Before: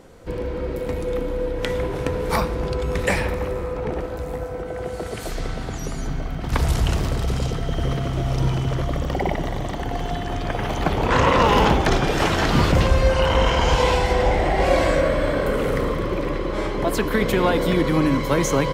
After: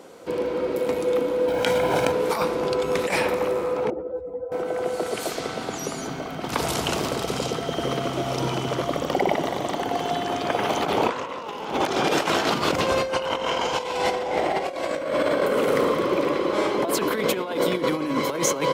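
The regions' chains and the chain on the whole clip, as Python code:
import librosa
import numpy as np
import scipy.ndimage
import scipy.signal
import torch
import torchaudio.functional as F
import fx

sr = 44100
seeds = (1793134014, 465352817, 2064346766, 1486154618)

y = fx.chain(x, sr, fx.comb(ms=1.3, depth=0.56),
    fx.quant_companded(bits=8),
    fx.env_flatten(amount_pct=100), at=(1.48, 2.12))
y = fx.chain(y, sr, fx.spec_expand(power=1.9),
    fx.ensemble(), at=(3.9, 4.52))
y = scipy.signal.sosfilt(scipy.signal.butter(2, 280.0, 'highpass', fs=sr, output='sos'), y)
y = fx.peak_eq(y, sr, hz=1800.0, db=-5.5, octaves=0.33)
y = fx.over_compress(y, sr, threshold_db=-24.0, ratio=-0.5)
y = y * librosa.db_to_amplitude(2.0)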